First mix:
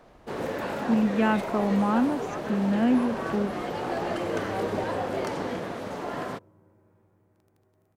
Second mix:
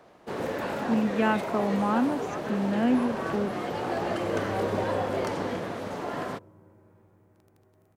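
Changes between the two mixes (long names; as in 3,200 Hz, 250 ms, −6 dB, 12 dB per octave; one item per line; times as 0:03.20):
speech: add high-pass filter 210 Hz
second sound +4.5 dB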